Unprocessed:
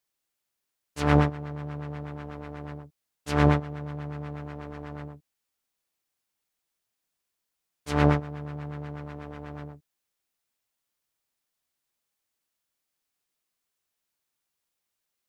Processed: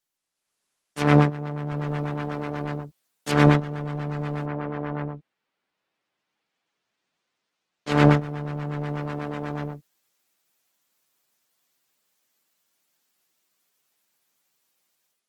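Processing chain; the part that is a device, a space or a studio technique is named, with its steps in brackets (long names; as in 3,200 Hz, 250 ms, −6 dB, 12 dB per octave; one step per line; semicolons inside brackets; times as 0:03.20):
0:04.45–0:07.90: low-pass filter 2,100 Hz → 4,500 Hz 12 dB per octave
dynamic equaliser 790 Hz, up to −3 dB, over −33 dBFS, Q 0.77
video call (high-pass filter 130 Hz 24 dB per octave; automatic gain control gain up to 10 dB; Opus 16 kbit/s 48,000 Hz)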